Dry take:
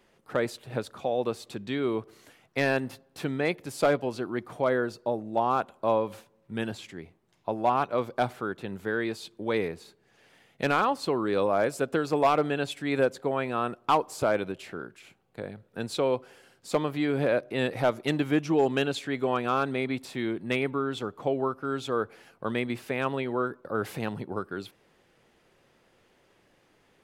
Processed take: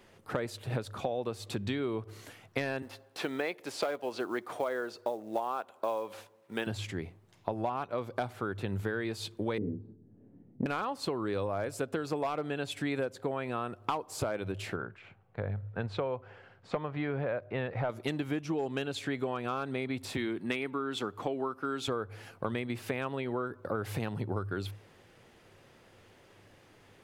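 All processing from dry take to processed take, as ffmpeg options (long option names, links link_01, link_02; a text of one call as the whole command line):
ffmpeg -i in.wav -filter_complex "[0:a]asettb=1/sr,asplit=3[link_01][link_02][link_03];[link_01]atrim=end=2.824[link_04];[link_02]atrim=start=2.82:end=6.67,asetpts=PTS-STARTPTS,afade=type=in:duration=0.004:curve=qsin,afade=type=out:start_time=3.846:duration=0.004:curve=qsin,highpass=380,acrossover=split=5700[link_05][link_06];[link_06]acompressor=threshold=-57dB:ratio=4:attack=1:release=60[link_07];[link_05][link_07]amix=inputs=2:normalize=0,acrusher=bits=7:mode=log:mix=0:aa=0.000001[link_08];[link_03]atrim=start=6.666[link_09];[link_04][link_08]acrossfade=duration=0.004:curve1=hsin:curve2=qsin[link_10];[link_10][link_09]acrossfade=duration=0.004:curve1=qsin:curve2=hsin,asettb=1/sr,asplit=3[link_11][link_12][link_13];[link_11]atrim=end=9.584[link_14];[link_12]atrim=start=9.58:end=10.66,asetpts=PTS-STARTPTS,afade=type=in:duration=0.004:curve=qsin,afade=type=out:start_time=1.076:duration=0.004:curve=qsin,lowpass=frequency=260:width_type=q:width=3.1,asplit=2[link_15][link_16];[link_16]adelay=28,volume=-4dB[link_17];[link_15][link_17]amix=inputs=2:normalize=0,atrim=end_sample=47628[link_18];[link_13]atrim=start=10.656[link_19];[link_14][link_18]acrossfade=duration=0.004:curve1=hsin:curve2=qsin[link_20];[link_20][link_19]acrossfade=duration=0.004:curve1=qsin:curve2=hsin,asettb=1/sr,asplit=3[link_21][link_22][link_23];[link_21]atrim=end=14.764[link_24];[link_22]atrim=start=14.76:end=17.9,asetpts=PTS-STARTPTS,afade=type=in:duration=0.004:curve=qsin,afade=type=out:start_time=3.136:duration=0.004:curve=qsin,lowpass=1900,equalizer=frequency=300:width=1.3:gain=-8[link_25];[link_23]atrim=start=17.896[link_26];[link_24][link_25]acrossfade=duration=0.004:curve1=hsin:curve2=qsin[link_27];[link_27][link_26]acrossfade=duration=0.004:curve1=qsin:curve2=hsin,asettb=1/sr,asplit=3[link_28][link_29][link_30];[link_28]atrim=end=20.174[link_31];[link_29]atrim=start=20.17:end=21.88,asetpts=PTS-STARTPTS,afade=type=in:duration=0.004:curve=qsin,afade=type=out:start_time=1.706:duration=0.004:curve=qsin,highpass=220,equalizer=frequency=560:width_type=o:width=0.9:gain=-5.5[link_32];[link_30]atrim=start=21.876[link_33];[link_31][link_32]acrossfade=duration=0.004:curve1=hsin:curve2=qsin[link_34];[link_34][link_33]acrossfade=duration=0.004:curve1=qsin:curve2=hsin,equalizer=frequency=100:width_type=o:width=0.28:gain=14.5,bandreject=frequency=52.54:width_type=h:width=4,bandreject=frequency=105.08:width_type=h:width=4,acompressor=threshold=-34dB:ratio=10,volume=4.5dB" out.wav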